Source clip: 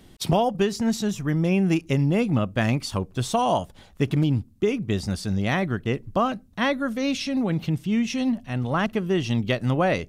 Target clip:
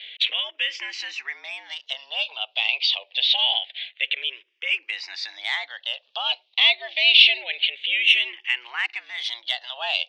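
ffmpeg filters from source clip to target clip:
-filter_complex "[0:a]agate=range=-33dB:threshold=-46dB:ratio=3:detection=peak,acompressor=mode=upward:threshold=-43dB:ratio=2.5,alimiter=limit=-21.5dB:level=0:latency=1:release=148,highpass=f=540:t=q:w=0.5412,highpass=f=540:t=q:w=1.307,lowpass=f=3.3k:t=q:w=0.5176,lowpass=f=3.3k:t=q:w=0.7071,lowpass=f=3.3k:t=q:w=1.932,afreqshift=120,aexciter=amount=15.2:drive=7.4:freq=2.1k,asplit=2[a][b];[b]afreqshift=-0.26[c];[a][c]amix=inputs=2:normalize=1,volume=1.5dB"

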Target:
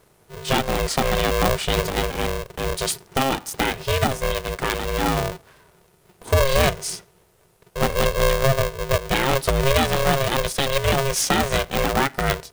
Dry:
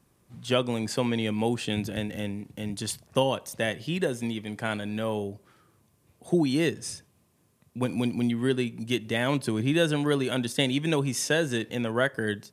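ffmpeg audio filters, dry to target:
-filter_complex "[0:a]asettb=1/sr,asplit=3[a][b][c];[a]atrim=end=8.434[d];[b]atrim=start=8.43:end=9.06,asetpts=PTS-STARTPTS,afade=t=in:d=0.004:c=qsin,afade=t=out:st=0.626:d=0.004:c=qsin,lowpass=1.2k[e];[c]atrim=start=9.056[f];[d][e]acrossfade=d=0.004:c1=hsin:c2=qsin[g];[g][f]acrossfade=d=0.004:c1=qsin:c2=hsin,alimiter=limit=-15.5dB:level=0:latency=1:release=290,aeval=exprs='val(0)*sgn(sin(2*PI*270*n/s))':c=same,volume=8dB"

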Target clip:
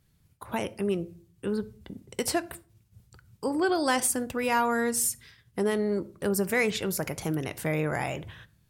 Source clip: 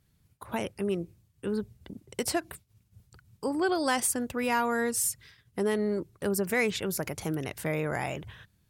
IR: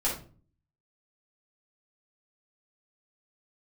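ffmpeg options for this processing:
-filter_complex "[0:a]asplit=2[a][b];[1:a]atrim=start_sample=2205,adelay=6[c];[b][c]afir=irnorm=-1:irlink=0,volume=-22.5dB[d];[a][d]amix=inputs=2:normalize=0,volume=1.5dB"

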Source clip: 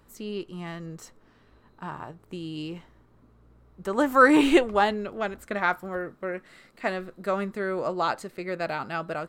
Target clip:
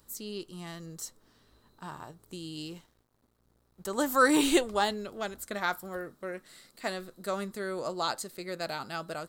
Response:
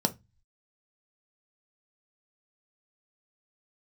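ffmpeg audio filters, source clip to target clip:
-filter_complex "[0:a]aexciter=amount=4.2:drive=5.1:freq=3.5k,asettb=1/sr,asplit=3[a][b][c];[a]atrim=end=2.564[d];[b]atrim=start=2.56:end=3.91,asetpts=PTS-STARTPTS,afade=t=in:d=0.004:c=qsin,afade=t=out:st=1.346:d=0.004:c=qsin,aeval=exprs='sgn(val(0))*max(abs(val(0))-0.00133,0)':c=same[e];[c]atrim=start=3.906[f];[d][e]acrossfade=d=0.004:c1=hsin:c2=qsin[g];[g][f]acrossfade=d=0.004:c1=qsin:c2=hsin,volume=-6dB"

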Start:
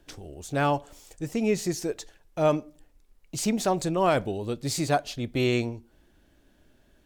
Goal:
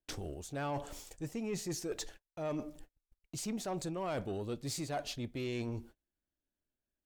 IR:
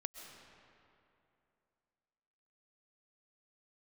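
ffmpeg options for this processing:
-af "agate=range=-35dB:threshold=-51dB:ratio=16:detection=peak,areverse,acompressor=threshold=-39dB:ratio=4,areverse,asoftclip=type=tanh:threshold=-32.5dB,volume=3dB"

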